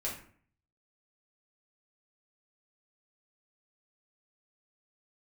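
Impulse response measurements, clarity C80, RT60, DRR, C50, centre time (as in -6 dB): 10.5 dB, 0.50 s, -6.0 dB, 6.0 dB, 31 ms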